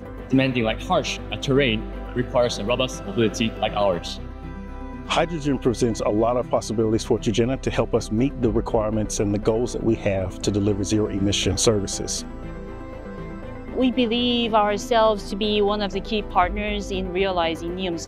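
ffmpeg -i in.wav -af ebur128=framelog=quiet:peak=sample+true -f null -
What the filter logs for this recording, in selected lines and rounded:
Integrated loudness:
  I:         -22.6 LUFS
  Threshold: -33.0 LUFS
Loudness range:
  LRA:         2.5 LU
  Threshold: -43.0 LUFS
  LRA low:   -24.4 LUFS
  LRA high:  -21.9 LUFS
Sample peak:
  Peak:       -5.8 dBFS
True peak:
  Peak:       -5.8 dBFS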